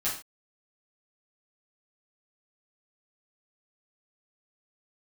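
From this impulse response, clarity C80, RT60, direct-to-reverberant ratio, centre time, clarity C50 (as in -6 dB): 11.0 dB, no single decay rate, -10.0 dB, 31 ms, 6.0 dB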